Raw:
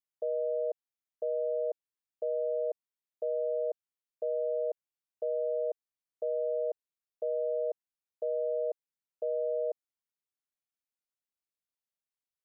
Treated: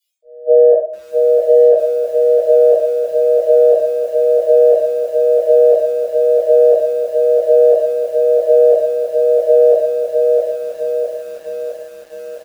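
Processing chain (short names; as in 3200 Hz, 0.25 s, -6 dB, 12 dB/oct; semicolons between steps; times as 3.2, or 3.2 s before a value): auto swell 0.766 s; HPF 480 Hz 12 dB/oct; transient shaper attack +6 dB, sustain -11 dB; reverb removal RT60 1.3 s; bell 610 Hz +10 dB 0.35 oct; spectral noise reduction 25 dB; echo 0.768 s -17 dB; shoebox room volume 33 m³, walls mixed, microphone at 1.5 m; maximiser +21.5 dB; lo-fi delay 0.658 s, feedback 55%, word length 7-bit, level -4 dB; gain -1 dB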